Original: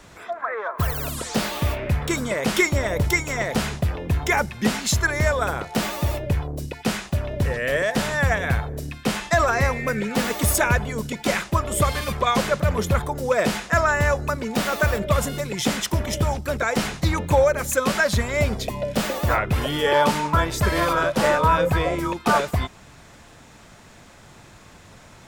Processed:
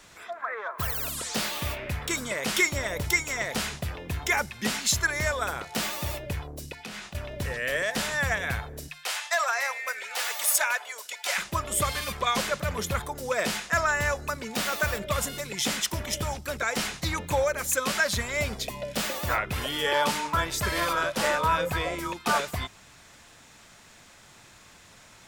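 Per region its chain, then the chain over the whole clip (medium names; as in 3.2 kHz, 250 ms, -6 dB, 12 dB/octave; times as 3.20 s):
6.75–7.15 s: treble shelf 7.2 kHz -10 dB + compression 5:1, threshold -31 dBFS + doubling 24 ms -7 dB
8.88–11.38 s: high-pass 620 Hz 24 dB/octave + hard clipper -12 dBFS + band-stop 1.1 kHz, Q 26
whole clip: tilt shelf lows -5 dB, about 1.2 kHz; hum notches 50/100/150 Hz; trim -5 dB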